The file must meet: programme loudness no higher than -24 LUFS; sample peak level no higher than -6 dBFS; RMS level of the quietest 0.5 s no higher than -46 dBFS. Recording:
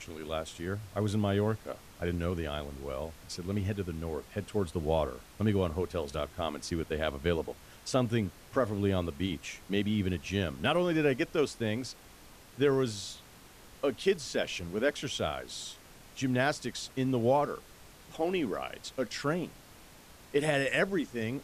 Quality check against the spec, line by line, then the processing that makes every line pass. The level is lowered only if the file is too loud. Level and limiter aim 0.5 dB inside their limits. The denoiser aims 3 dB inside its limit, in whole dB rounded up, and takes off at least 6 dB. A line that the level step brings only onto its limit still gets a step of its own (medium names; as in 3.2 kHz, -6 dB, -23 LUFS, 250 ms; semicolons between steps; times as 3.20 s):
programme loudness -32.5 LUFS: pass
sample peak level -14.5 dBFS: pass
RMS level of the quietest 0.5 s -54 dBFS: pass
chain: none needed